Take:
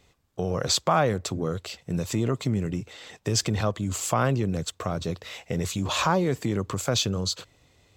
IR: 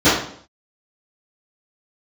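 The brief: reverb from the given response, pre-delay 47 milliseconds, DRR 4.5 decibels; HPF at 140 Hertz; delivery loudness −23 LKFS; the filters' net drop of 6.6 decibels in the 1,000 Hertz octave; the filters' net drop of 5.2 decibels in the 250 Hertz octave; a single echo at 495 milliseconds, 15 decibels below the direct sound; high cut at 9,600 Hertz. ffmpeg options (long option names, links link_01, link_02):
-filter_complex "[0:a]highpass=140,lowpass=9600,equalizer=frequency=250:width_type=o:gain=-6,equalizer=frequency=1000:width_type=o:gain=-8.5,aecho=1:1:495:0.178,asplit=2[link_01][link_02];[1:a]atrim=start_sample=2205,adelay=47[link_03];[link_02][link_03]afir=irnorm=-1:irlink=0,volume=-30dB[link_04];[link_01][link_04]amix=inputs=2:normalize=0,volume=5.5dB"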